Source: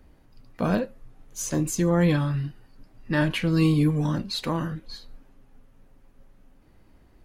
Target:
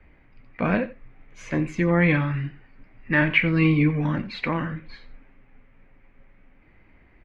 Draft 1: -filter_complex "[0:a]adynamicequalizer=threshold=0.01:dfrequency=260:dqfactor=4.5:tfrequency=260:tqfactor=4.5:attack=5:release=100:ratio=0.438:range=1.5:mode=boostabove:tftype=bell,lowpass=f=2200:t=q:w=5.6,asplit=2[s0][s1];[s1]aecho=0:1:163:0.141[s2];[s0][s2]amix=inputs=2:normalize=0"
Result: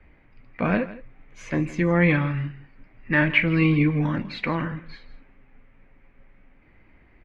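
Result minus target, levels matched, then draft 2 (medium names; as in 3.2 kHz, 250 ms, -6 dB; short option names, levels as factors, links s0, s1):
echo 75 ms late
-filter_complex "[0:a]adynamicequalizer=threshold=0.01:dfrequency=260:dqfactor=4.5:tfrequency=260:tqfactor=4.5:attack=5:release=100:ratio=0.438:range=1.5:mode=boostabove:tftype=bell,lowpass=f=2200:t=q:w=5.6,asplit=2[s0][s1];[s1]aecho=0:1:88:0.141[s2];[s0][s2]amix=inputs=2:normalize=0"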